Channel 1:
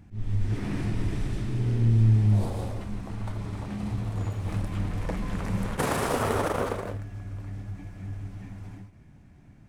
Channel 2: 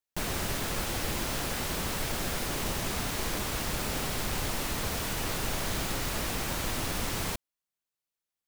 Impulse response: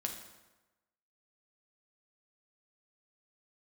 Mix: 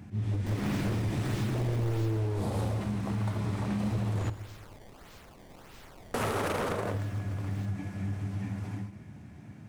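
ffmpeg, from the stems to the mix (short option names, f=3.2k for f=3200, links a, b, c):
-filter_complex "[0:a]alimiter=limit=-19.5dB:level=0:latency=1:release=246,highpass=f=80:w=0.5412,highpass=f=80:w=1.3066,aeval=exprs='0.0473*(abs(mod(val(0)/0.0473+3,4)-2)-1)':c=same,volume=3dB,asplit=3[a][b][c];[a]atrim=end=4.3,asetpts=PTS-STARTPTS,afade=t=out:st=4.296:d=0.004:c=hsin[d];[b]atrim=start=4.3:end=6.14,asetpts=PTS-STARTPTS,volume=0[e];[c]atrim=start=6.14,asetpts=PTS-STARTPTS,afade=t=in:d=0.004:c=hsin[f];[d][e][f]concat=n=3:v=0:a=1,asplit=2[g][h];[h]volume=-6.5dB[i];[1:a]acrusher=samples=19:mix=1:aa=0.000001:lfo=1:lforange=30.4:lforate=1.6,adelay=300,volume=-6dB,afade=t=out:st=1.83:d=0.53:silence=0.223872[j];[2:a]atrim=start_sample=2205[k];[i][k]afir=irnorm=-1:irlink=0[l];[g][j][l]amix=inputs=3:normalize=0,acompressor=threshold=-29dB:ratio=2.5"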